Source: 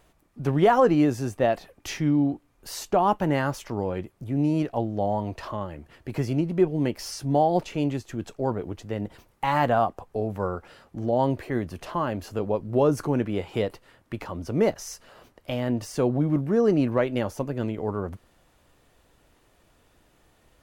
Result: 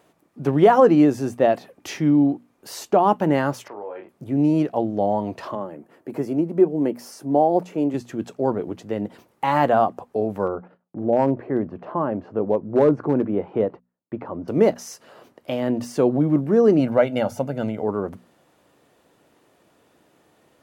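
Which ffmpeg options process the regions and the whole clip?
-filter_complex "[0:a]asettb=1/sr,asplit=3[a][b][c];[a]atrim=end=3.684[d];[b]atrim=start=3.68:end=4.09,asetpts=PTS-STARTPTS,afade=t=in:d=0.004:c=qsin,afade=t=out:st=0.406:d=0.004:c=qsin,acrossover=split=460 2700:gain=0.0708 1 0.0794[e][f][g];[e][f][g]amix=inputs=3:normalize=0,asplit=2[h][i];[i]adelay=29,volume=-5dB[j];[h][j]amix=inputs=2:normalize=0,atrim=end_sample=18081,acompressor=threshold=-39dB:ratio=2:attack=3.2:release=140:knee=1:detection=peak[k];[c]atrim=start=4.086[l];[d][k]acrossfade=d=0.004:c1=hsin:c2=qsin[m];[m][l]acrossfade=d=0.004:c1=qsin:c2=hsin,asettb=1/sr,asplit=3[n][o][p];[n]atrim=end=5.554[q];[o]atrim=start=5.55:end=7.94,asetpts=PTS-STARTPTS,afade=t=in:d=0.004:c=qsin,afade=t=out:st=2.386:d=0.004:c=qsin,highpass=200,equalizer=f=3.6k:w=0.61:g=-10.5[r];[p]atrim=start=7.936[s];[q][r]acrossfade=d=0.004:c1=hsin:c2=qsin[t];[t][s]acrossfade=d=0.004:c1=qsin:c2=hsin,asettb=1/sr,asplit=3[u][v][w];[u]atrim=end=10.474[x];[v]atrim=start=10.47:end=14.48,asetpts=PTS-STARTPTS,afade=t=in:d=0.004:c=qsin,afade=t=out:st=4.006:d=0.004:c=qsin,lowpass=1.3k,asoftclip=type=hard:threshold=-15dB,agate=range=-33dB:threshold=-52dB:ratio=16:release=100:detection=peak[y];[w]atrim=start=14.476[z];[x][y]acrossfade=d=0.004:c1=hsin:c2=qsin[aa];[aa][z]acrossfade=d=0.004:c1=qsin:c2=hsin,asettb=1/sr,asplit=3[ab][ac][ad];[ab]atrim=end=16.794[ae];[ac]atrim=start=16.79:end=17.83,asetpts=PTS-STARTPTS,afade=t=in:d=0.004:c=qsin,afade=t=out:st=1.036:d=0.004:c=qsin,bandreject=f=50:t=h:w=6,bandreject=f=100:t=h:w=6,bandreject=f=150:t=h:w=6,aecho=1:1:1.4:0.62,atrim=end_sample=45864[af];[ad]atrim=start=17.826[ag];[ae][af]acrossfade=d=0.004:c1=hsin:c2=qsin[ah];[ah][ag]acrossfade=d=0.004:c1=qsin:c2=hsin,highpass=150,equalizer=f=310:w=0.32:g=6,bandreject=f=60:t=h:w=6,bandreject=f=120:t=h:w=6,bandreject=f=180:t=h:w=6,bandreject=f=240:t=h:w=6"

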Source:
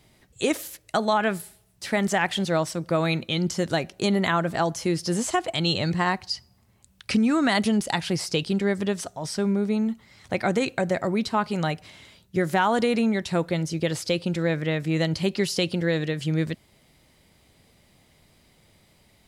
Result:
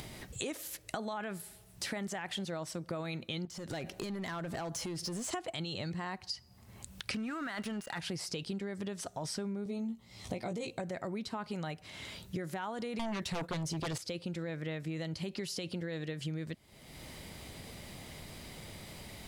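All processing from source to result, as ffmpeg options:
-filter_complex "[0:a]asettb=1/sr,asplit=3[a][b][c];[a]atrim=end=3.454[d];[b]atrim=start=3.45:end=5.33,asetpts=PTS-STARTPTS,afade=t=in:d=0.004:c=qsin,afade=t=out:st=1.876:d=0.004:c=qsin,acompressor=threshold=-32dB:ratio=6:attack=3.2:release=140:knee=1:detection=peak,volume=32.5dB,asoftclip=hard,volume=-32.5dB[e];[c]atrim=start=5.326[f];[d][e]acrossfade=d=0.004:c1=hsin:c2=qsin[g];[g][f]acrossfade=d=0.004:c1=qsin:c2=hsin,asettb=1/sr,asplit=3[h][i][j];[h]atrim=end=7.144[k];[i]atrim=start=7.14:end=7.99,asetpts=PTS-STARTPTS,afade=t=in:d=0.004:c=qsin,afade=t=out:st=0.846:d=0.004:c=qsin,equalizer=f=1.5k:w=1.4:g=11.5,aeval=exprs='sgn(val(0))*max(abs(val(0))-0.0133,0)':c=same,aeval=exprs='val(0)+0.00398*sin(2*PI*2800*n/s)':c=same[l];[j]atrim=start=7.986[m];[k][l]acrossfade=d=0.004:c1=hsin:c2=qsin[n];[n][m]acrossfade=d=0.004:c1=qsin:c2=hsin,asettb=1/sr,asplit=3[o][p][q];[o]atrim=end=9.644[r];[p]atrim=start=9.64:end=10.8,asetpts=PTS-STARTPTS,afade=t=in:d=0.004:c=qsin,afade=t=out:st=1.156:d=0.004:c=qsin,equalizer=f=1.6k:t=o:w=0.84:g=-12.5,asplit=2[s][t];[t]adelay=17,volume=-3dB[u];[s][u]amix=inputs=2:normalize=0,atrim=end_sample=51156[v];[q]atrim=start=10.796[w];[r][v]acrossfade=d=0.004:c1=hsin:c2=qsin[x];[x][w]acrossfade=d=0.004:c1=qsin:c2=hsin,asettb=1/sr,asplit=3[y][z][aa];[y]atrim=end=12.994[ab];[z]atrim=start=12.99:end=13.98,asetpts=PTS-STARTPTS,afade=t=in:d=0.004:c=qsin,afade=t=out:st=0.986:d=0.004:c=qsin,aeval=exprs='0.251*sin(PI/2*3.55*val(0)/0.251)':c=same,agate=range=-33dB:threshold=-19dB:ratio=3:release=100:detection=peak[ac];[aa]atrim=start=13.976[ad];[ab][ac]acrossfade=d=0.004:c1=hsin:c2=qsin[ae];[ae][ad]acrossfade=d=0.004:c1=qsin:c2=hsin,acompressor=mode=upward:threshold=-41dB:ratio=2.5,alimiter=limit=-17dB:level=0:latency=1:release=18,acompressor=threshold=-39dB:ratio=8,volume=3dB"

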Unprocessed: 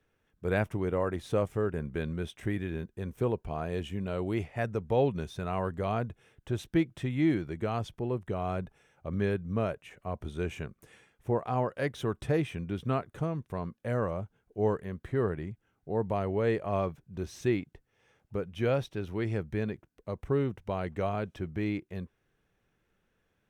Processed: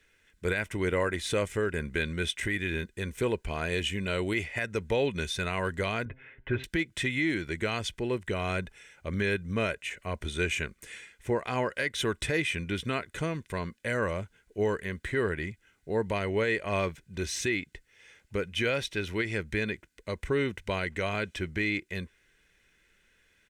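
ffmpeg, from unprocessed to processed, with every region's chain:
-filter_complex "[0:a]asettb=1/sr,asplit=3[a][b][c];[a]atrim=end=6.054[d];[b]atrim=start=6.05:end=6.64,asetpts=PTS-STARTPTS,afade=t=in:d=0.004:c=qsin,afade=t=out:st=0.586:d=0.004:c=qsin,lowpass=f=2.2k:w=0.5412,lowpass=f=2.2k:w=1.3066,aecho=1:1:7.5:0.94,atrim=end_sample=26019,bandreject=f=129.8:t=h:w=4,bandreject=f=259.6:t=h:w=4,bandreject=f=389.4:t=h:w=4,bandreject=f=519.2:t=h:w=4,bandreject=f=649:t=h:w=4,bandreject=f=778.8:t=h:w=4,bandreject=f=908.6:t=h:w=4[e];[c]atrim=start=6.636[f];[d][e]acrossfade=d=0.004:c1=hsin:c2=qsin[g];[g][f]acrossfade=d=0.004:c1=qsin:c2=hsin,equalizer=f=125:t=o:w=1:g=-9,equalizer=f=250:t=o:w=1:g=3,equalizer=f=500:t=o:w=1:g=-5,equalizer=f=1k:t=o:w=1:g=-6,equalizer=f=2k:t=o:w=1:g=11,equalizer=f=4k:t=o:w=1:g=5,equalizer=f=8k:t=o:w=1:g=10,alimiter=limit=-23dB:level=0:latency=1:release=191,aecho=1:1:2:0.37,volume=5dB"

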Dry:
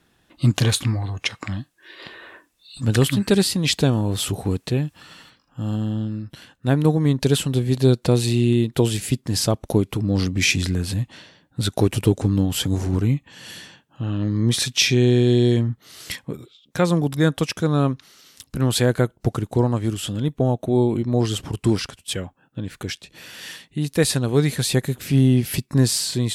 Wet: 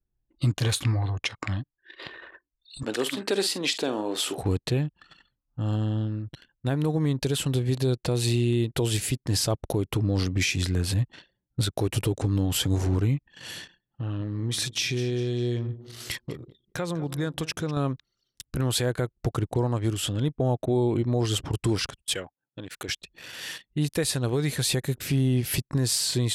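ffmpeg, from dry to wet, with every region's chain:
-filter_complex "[0:a]asettb=1/sr,asplit=3[a][b][c];[a]atrim=end=2.834[d];[b]atrim=start=2.83:end=4.38,asetpts=PTS-STARTPTS,afade=t=in:d=0.004:c=qsin,afade=t=out:st=1.546:d=0.004:c=qsin,highpass=f=260:w=0.5412,highpass=f=260:w=1.3066,highshelf=f=11k:g=-10,asplit=2[e][f];[f]adelay=46,volume=-13dB[g];[e][g]amix=inputs=2:normalize=0,atrim=end_sample=68355[h];[c]atrim=start=4.376[i];[d][h]acrossfade=d=0.004:c1=hsin:c2=qsin[j];[j][i]acrossfade=d=0.004:c1=qsin:c2=hsin,asettb=1/sr,asplit=3[k][l][m];[k]atrim=end=13.514[n];[l]atrim=start=13.51:end=17.77,asetpts=PTS-STARTPTS,afade=t=in:d=0.004:c=qsin,afade=t=out:st=4.256:d=0.004:c=qsin,acompressor=threshold=-27dB:ratio=2.5:attack=3.2:release=140:knee=1:detection=peak,aecho=1:1:198|396|594|792:0.168|0.0823|0.0403|0.0198,atrim=end_sample=187866[o];[m]atrim=start=17.766[p];[n][o]acrossfade=d=0.004:c1=hsin:c2=qsin[q];[q][p]acrossfade=d=0.004:c1=qsin:c2=hsin,asettb=1/sr,asplit=3[r][s][t];[r]atrim=end=22.144[u];[s]atrim=start=22.14:end=22.89,asetpts=PTS-STARTPTS,afade=t=in:d=0.004:c=qsin,afade=t=out:st=0.746:d=0.004:c=qsin,highpass=f=460:p=1,highshelf=f=3.3k:g=3.5[v];[t]atrim=start=22.886[w];[u][v]acrossfade=d=0.004:c1=hsin:c2=qsin[x];[x][w]acrossfade=d=0.004:c1=qsin:c2=hsin,anlmdn=0.398,equalizer=f=210:t=o:w=0.54:g=-7,alimiter=limit=-15dB:level=0:latency=1:release=147"

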